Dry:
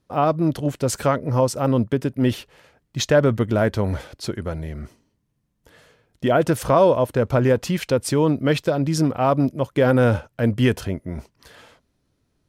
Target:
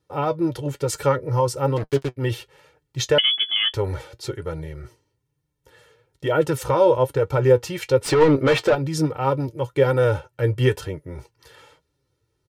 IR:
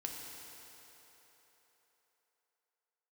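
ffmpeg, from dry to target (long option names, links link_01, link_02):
-filter_complex "[0:a]highpass=53,aecho=1:1:2.2:0.9,asplit=3[link_01][link_02][link_03];[link_01]afade=type=out:start_time=1.76:duration=0.02[link_04];[link_02]acrusher=bits=3:mix=0:aa=0.5,afade=type=in:start_time=1.76:duration=0.02,afade=type=out:start_time=2.16:duration=0.02[link_05];[link_03]afade=type=in:start_time=2.16:duration=0.02[link_06];[link_04][link_05][link_06]amix=inputs=3:normalize=0,asettb=1/sr,asplit=3[link_07][link_08][link_09];[link_07]atrim=end=8.014[link_10];[link_08]atrim=start=8.01:end=8.75,asetpts=PTS-STARTPTS,afade=type=in:duration=0.004:curve=qsin,afade=type=out:start_time=0.736:duration=0.004:curve=qsin,asplit=2[link_11][link_12];[link_12]highpass=frequency=720:poles=1,volume=25dB,asoftclip=type=tanh:threshold=-4dB[link_13];[link_11][link_13]amix=inputs=2:normalize=0,lowpass=frequency=1600:poles=1,volume=-6dB[link_14];[link_09]atrim=start=8.746[link_15];[link_10][link_14]acrossfade=duration=0.004:curve1=hsin:curve2=qsin[link_16];[link_16][link_15]acrossfade=duration=0.004:curve1=qsin:curve2=hsin,flanger=delay=6.2:depth=2.8:regen=52:speed=1.1:shape=triangular,asettb=1/sr,asplit=3[link_17][link_18][link_19];[link_17]atrim=end=3.184[link_20];[link_18]atrim=start=3.18:end=3.74,asetpts=PTS-STARTPTS,afade=type=in:duration=0.004:curve=qsin,afade=type=out:start_time=0.556:duration=0.004:curve=qsin,lowpass=frequency=3000:width_type=q:width=0.5098,lowpass=frequency=3000:width_type=q:width=0.6013,lowpass=frequency=3000:width_type=q:width=0.9,lowpass=frequency=3000:width_type=q:width=2.563,afreqshift=-3500[link_21];[link_19]atrim=start=3.736[link_22];[link_20][link_21]acrossfade=duration=0.004:curve1=hsin:curve2=qsin[link_23];[link_23][link_22]acrossfade=duration=0.004:curve1=qsin:curve2=hsin"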